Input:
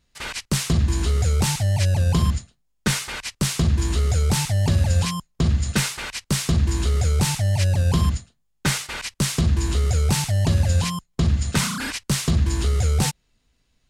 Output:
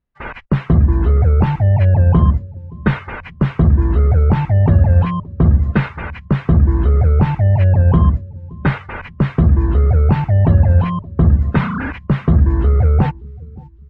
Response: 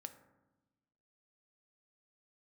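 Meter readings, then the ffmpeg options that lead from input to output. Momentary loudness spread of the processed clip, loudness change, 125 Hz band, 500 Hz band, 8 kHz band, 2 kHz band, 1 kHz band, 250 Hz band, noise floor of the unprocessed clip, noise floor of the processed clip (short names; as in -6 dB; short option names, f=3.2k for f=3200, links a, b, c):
11 LU, +7.5 dB, +8.0 dB, +8.0 dB, under -35 dB, +2.0 dB, +7.0 dB, +8.0 dB, -69 dBFS, -38 dBFS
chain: -filter_complex "[0:a]lowpass=1.5k,asplit=2[a][b];[b]aecho=0:1:572|1144|1716:0.0891|0.0383|0.0165[c];[a][c]amix=inputs=2:normalize=0,afftdn=nr=18:nf=-42,volume=8dB"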